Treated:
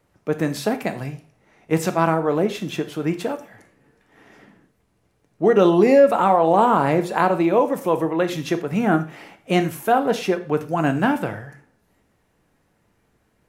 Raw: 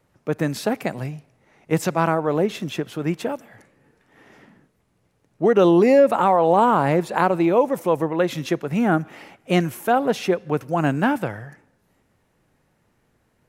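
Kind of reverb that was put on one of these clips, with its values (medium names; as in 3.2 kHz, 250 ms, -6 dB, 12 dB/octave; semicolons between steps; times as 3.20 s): gated-style reverb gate 140 ms falling, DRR 7.5 dB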